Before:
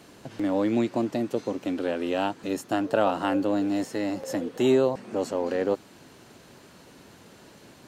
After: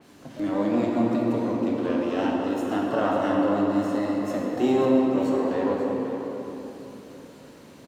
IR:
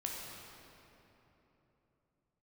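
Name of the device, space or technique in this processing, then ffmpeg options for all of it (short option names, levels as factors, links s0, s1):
shimmer-style reverb: -filter_complex "[0:a]asplit=2[s0][s1];[s1]asetrate=88200,aresample=44100,atempo=0.5,volume=0.282[s2];[s0][s2]amix=inputs=2:normalize=0[s3];[1:a]atrim=start_sample=2205[s4];[s3][s4]afir=irnorm=-1:irlink=0,asettb=1/sr,asplit=3[s5][s6][s7];[s5]atrim=end=2.354[s8];[s6]atrim=start=2.35:end=4.24,asetpts=PTS-STARTPTS,afade=t=in:d=0.004:c=qsin,afade=t=out:st=1.886:d=0.004:c=qsin,bandreject=f=2400:w=7.8[s9];[s7]atrim=start=4.236[s10];[s8][s9]acrossfade=d=0.004:c1=hsin:c2=qsin[s11];[s11][s10]acrossfade=d=0.004:c1=qsin:c2=hsin,equalizer=f=250:t=o:w=0.47:g=5.5,aecho=1:1:539:0.266,adynamicequalizer=threshold=0.00501:dfrequency=3800:dqfactor=0.7:tfrequency=3800:tqfactor=0.7:attack=5:release=100:ratio=0.375:range=2.5:mode=cutabove:tftype=highshelf,volume=0.841"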